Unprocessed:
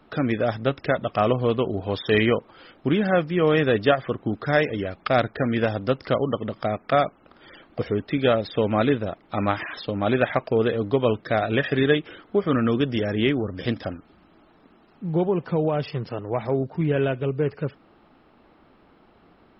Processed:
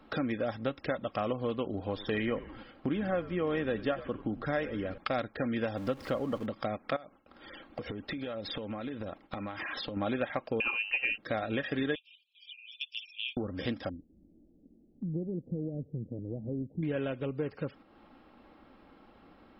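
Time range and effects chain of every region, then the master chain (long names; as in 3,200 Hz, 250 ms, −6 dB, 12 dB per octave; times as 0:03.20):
0:01.86–0:04.98: high-shelf EQ 4,800 Hz −11.5 dB + echo with shifted repeats 91 ms, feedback 47%, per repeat −84 Hz, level −16.5 dB
0:05.77–0:06.46: converter with a step at zero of −34 dBFS + high-shelf EQ 3,600 Hz −6.5 dB
0:06.96–0:09.97: noise gate with hold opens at −45 dBFS, closes at −50 dBFS + downward compressor 12 to 1, threshold −33 dBFS
0:10.60–0:11.18: parametric band 2,100 Hz +11 dB 0.53 octaves + voice inversion scrambler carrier 2,900 Hz
0:11.95–0:13.37: Chebyshev high-pass filter 2,400 Hz, order 10 + high-frequency loss of the air 120 metres
0:13.89–0:16.83: Gaussian smoothing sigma 24 samples + one half of a high-frequency compander encoder only
whole clip: noise gate −43 dBFS, range −7 dB; comb filter 3.7 ms, depth 37%; downward compressor 2.5 to 1, threshold −42 dBFS; level +4.5 dB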